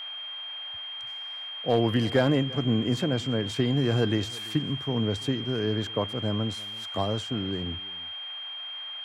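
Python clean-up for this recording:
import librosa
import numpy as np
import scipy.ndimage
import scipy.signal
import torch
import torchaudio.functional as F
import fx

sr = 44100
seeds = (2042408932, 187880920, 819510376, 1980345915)

y = fx.fix_declip(x, sr, threshold_db=-13.5)
y = fx.notch(y, sr, hz=3200.0, q=30.0)
y = fx.noise_reduce(y, sr, print_start_s=1.14, print_end_s=1.64, reduce_db=30.0)
y = fx.fix_echo_inverse(y, sr, delay_ms=338, level_db=-22.0)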